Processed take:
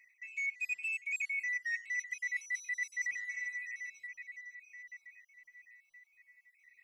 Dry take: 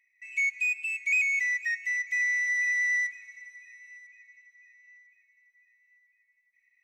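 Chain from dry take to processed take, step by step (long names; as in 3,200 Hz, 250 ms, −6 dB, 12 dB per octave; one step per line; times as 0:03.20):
time-frequency cells dropped at random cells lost 33%
reversed playback
downward compressor 12 to 1, threshold −42 dBFS, peak gain reduction 19.5 dB
reversed playback
level +8 dB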